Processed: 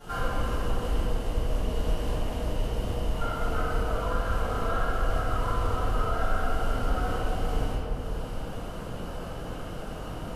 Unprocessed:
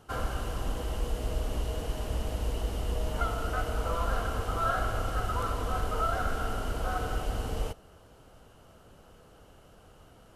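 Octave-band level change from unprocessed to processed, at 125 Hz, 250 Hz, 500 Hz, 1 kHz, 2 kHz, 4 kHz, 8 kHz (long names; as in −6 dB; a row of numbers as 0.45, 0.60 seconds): +3.0, +5.0, +3.5, +1.5, +2.0, +1.5, −1.5 decibels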